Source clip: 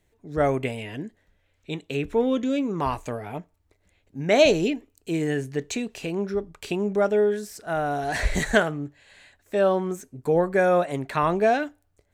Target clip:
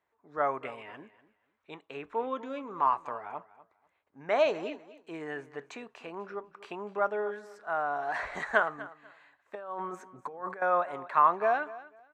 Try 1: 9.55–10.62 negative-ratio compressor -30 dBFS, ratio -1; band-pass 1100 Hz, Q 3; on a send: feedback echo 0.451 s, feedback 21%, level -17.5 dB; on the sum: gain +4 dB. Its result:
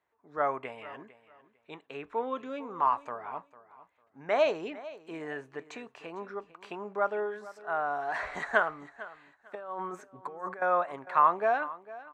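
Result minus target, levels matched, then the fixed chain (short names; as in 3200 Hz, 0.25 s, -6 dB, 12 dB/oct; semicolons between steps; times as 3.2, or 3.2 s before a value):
echo 0.205 s late
9.55–10.62 negative-ratio compressor -30 dBFS, ratio -1; band-pass 1100 Hz, Q 3; on a send: feedback echo 0.246 s, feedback 21%, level -17.5 dB; on the sum: gain +4 dB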